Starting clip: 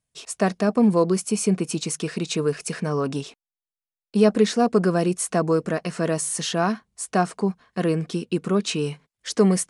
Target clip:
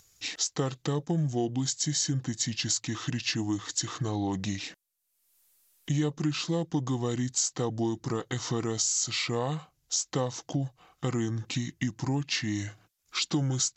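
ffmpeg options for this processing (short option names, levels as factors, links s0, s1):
-af "aemphasis=mode=production:type=50kf,acompressor=threshold=0.0355:ratio=3,asetrate=31046,aresample=44100,acompressor=mode=upward:threshold=0.00282:ratio=2.5"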